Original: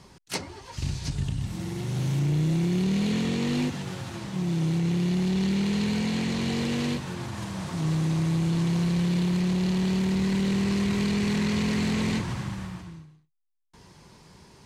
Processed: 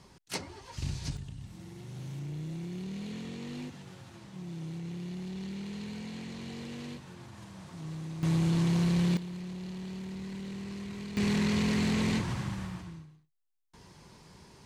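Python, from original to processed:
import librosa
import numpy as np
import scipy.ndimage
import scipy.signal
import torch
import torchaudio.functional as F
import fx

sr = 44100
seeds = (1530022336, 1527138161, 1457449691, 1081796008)

y = fx.gain(x, sr, db=fx.steps((0.0, -5.0), (1.17, -14.0), (8.23, -2.0), (9.17, -15.0), (11.17, -2.5)))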